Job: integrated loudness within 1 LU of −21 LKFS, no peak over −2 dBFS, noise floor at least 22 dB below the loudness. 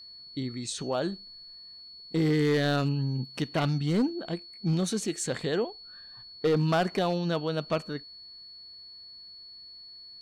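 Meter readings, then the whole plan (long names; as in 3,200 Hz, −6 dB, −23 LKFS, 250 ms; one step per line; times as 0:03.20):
share of clipped samples 1.2%; peaks flattened at −19.5 dBFS; interfering tone 4,400 Hz; level of the tone −45 dBFS; integrated loudness −29.0 LKFS; sample peak −19.5 dBFS; target loudness −21.0 LKFS
→ clipped peaks rebuilt −19.5 dBFS
notch filter 4,400 Hz, Q 30
level +8 dB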